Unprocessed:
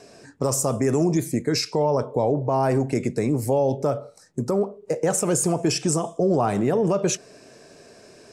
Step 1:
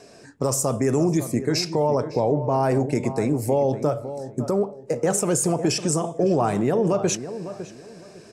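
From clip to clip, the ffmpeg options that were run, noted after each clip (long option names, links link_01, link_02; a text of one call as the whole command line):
ffmpeg -i in.wav -filter_complex "[0:a]asplit=2[link_01][link_02];[link_02]adelay=555,lowpass=frequency=1600:poles=1,volume=-11.5dB,asplit=2[link_03][link_04];[link_04]adelay=555,lowpass=frequency=1600:poles=1,volume=0.27,asplit=2[link_05][link_06];[link_06]adelay=555,lowpass=frequency=1600:poles=1,volume=0.27[link_07];[link_01][link_03][link_05][link_07]amix=inputs=4:normalize=0" out.wav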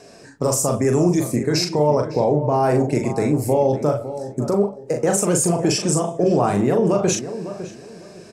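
ffmpeg -i in.wav -filter_complex "[0:a]asplit=2[link_01][link_02];[link_02]adelay=40,volume=-4.5dB[link_03];[link_01][link_03]amix=inputs=2:normalize=0,volume=2dB" out.wav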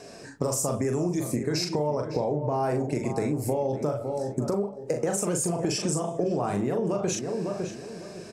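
ffmpeg -i in.wav -af "acompressor=threshold=-24dB:ratio=6" out.wav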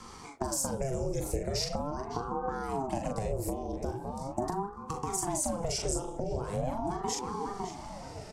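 ffmpeg -i in.wav -filter_complex "[0:a]acrossover=split=320|3000[link_01][link_02][link_03];[link_02]acompressor=threshold=-37dB:ratio=6[link_04];[link_01][link_04][link_03]amix=inputs=3:normalize=0,aeval=exprs='val(0)*sin(2*PI*410*n/s+410*0.55/0.41*sin(2*PI*0.41*n/s))':channel_layout=same" out.wav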